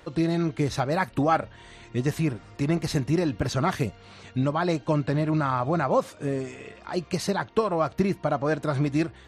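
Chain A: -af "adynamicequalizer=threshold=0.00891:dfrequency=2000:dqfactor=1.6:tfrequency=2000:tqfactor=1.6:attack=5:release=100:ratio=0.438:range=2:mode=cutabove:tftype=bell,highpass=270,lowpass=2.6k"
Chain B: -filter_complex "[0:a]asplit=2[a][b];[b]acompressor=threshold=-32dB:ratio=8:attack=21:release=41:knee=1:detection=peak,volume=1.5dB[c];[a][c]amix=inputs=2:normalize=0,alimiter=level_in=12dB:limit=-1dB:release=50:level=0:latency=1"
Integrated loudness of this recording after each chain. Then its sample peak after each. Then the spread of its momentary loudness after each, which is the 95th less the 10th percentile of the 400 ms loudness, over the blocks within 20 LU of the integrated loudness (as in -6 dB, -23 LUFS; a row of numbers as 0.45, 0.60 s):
-29.0, -12.0 LUFS; -10.0, -1.0 dBFS; 9, 7 LU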